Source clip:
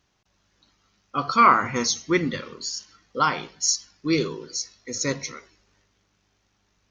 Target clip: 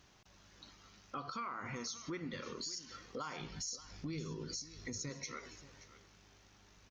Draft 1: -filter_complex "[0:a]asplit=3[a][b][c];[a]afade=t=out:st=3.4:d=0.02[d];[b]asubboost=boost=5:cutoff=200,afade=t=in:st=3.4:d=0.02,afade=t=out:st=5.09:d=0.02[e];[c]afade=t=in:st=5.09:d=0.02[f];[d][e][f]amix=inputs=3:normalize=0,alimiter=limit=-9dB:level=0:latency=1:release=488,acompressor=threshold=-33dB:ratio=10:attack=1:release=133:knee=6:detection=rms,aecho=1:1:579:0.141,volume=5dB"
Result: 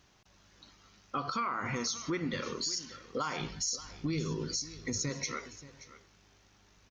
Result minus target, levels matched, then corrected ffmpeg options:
compressor: peak gain reduction -8.5 dB
-filter_complex "[0:a]asplit=3[a][b][c];[a]afade=t=out:st=3.4:d=0.02[d];[b]asubboost=boost=5:cutoff=200,afade=t=in:st=3.4:d=0.02,afade=t=out:st=5.09:d=0.02[e];[c]afade=t=in:st=5.09:d=0.02[f];[d][e][f]amix=inputs=3:normalize=0,alimiter=limit=-9dB:level=0:latency=1:release=488,acompressor=threshold=-42.5dB:ratio=10:attack=1:release=133:knee=6:detection=rms,aecho=1:1:579:0.141,volume=5dB"

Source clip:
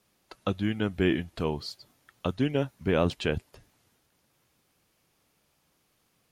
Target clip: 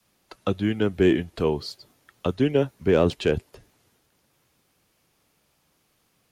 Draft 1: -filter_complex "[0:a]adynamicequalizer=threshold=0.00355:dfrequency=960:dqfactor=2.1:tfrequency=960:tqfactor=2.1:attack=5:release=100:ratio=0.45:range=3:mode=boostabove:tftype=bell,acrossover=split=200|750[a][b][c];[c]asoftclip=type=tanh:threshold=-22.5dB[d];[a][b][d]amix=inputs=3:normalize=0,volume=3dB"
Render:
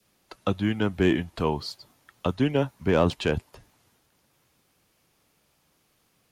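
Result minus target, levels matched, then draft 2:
1000 Hz band +5.0 dB
-filter_complex "[0:a]adynamicequalizer=threshold=0.00355:dfrequency=410:dqfactor=2.1:tfrequency=410:tqfactor=2.1:attack=5:release=100:ratio=0.45:range=3:mode=boostabove:tftype=bell,acrossover=split=200|750[a][b][c];[c]asoftclip=type=tanh:threshold=-22.5dB[d];[a][b][d]amix=inputs=3:normalize=0,volume=3dB"

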